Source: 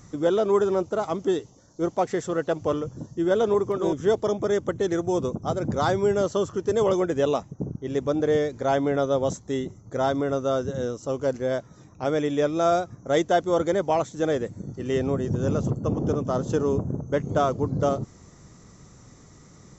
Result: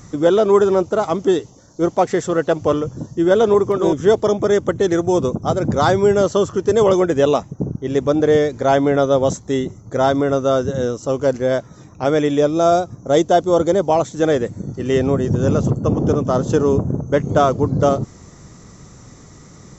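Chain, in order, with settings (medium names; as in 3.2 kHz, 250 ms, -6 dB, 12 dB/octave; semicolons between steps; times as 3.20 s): 12.38–14.05 s: peaking EQ 1.9 kHz -8 dB 1.1 oct; trim +8 dB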